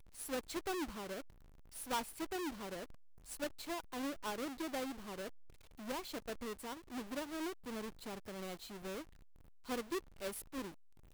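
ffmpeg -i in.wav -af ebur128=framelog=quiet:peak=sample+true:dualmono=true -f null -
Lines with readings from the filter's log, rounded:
Integrated loudness:
  I:         -40.5 LUFS
  Threshold: -50.9 LUFS
Loudness range:
  LRA:         2.6 LU
  Threshold: -61.1 LUFS
  LRA low:   -42.4 LUFS
  LRA high:  -39.9 LUFS
Sample peak:
  Peak:      -28.9 dBFS
True peak:
  Peak:      -27.0 dBFS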